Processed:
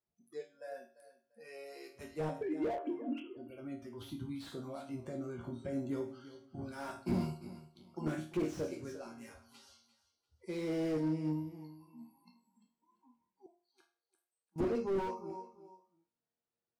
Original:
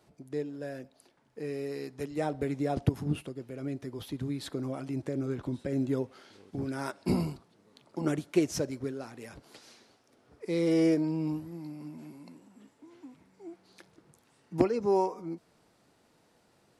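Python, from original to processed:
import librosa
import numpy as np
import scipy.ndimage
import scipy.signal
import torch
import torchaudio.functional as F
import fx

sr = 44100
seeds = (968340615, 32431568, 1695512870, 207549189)

y = fx.sine_speech(x, sr, at=(2.41, 3.37))
y = fx.noise_reduce_blind(y, sr, reduce_db=25)
y = fx.resonator_bank(y, sr, root=39, chord='minor', decay_s=0.37)
y = fx.ladder_highpass(y, sr, hz=430.0, resonance_pct=40, at=(13.46, 14.56))
y = fx.echo_feedback(y, sr, ms=345, feedback_pct=25, wet_db=-16.0)
y = fx.slew_limit(y, sr, full_power_hz=5.2)
y = F.gain(torch.from_numpy(y), 7.5).numpy()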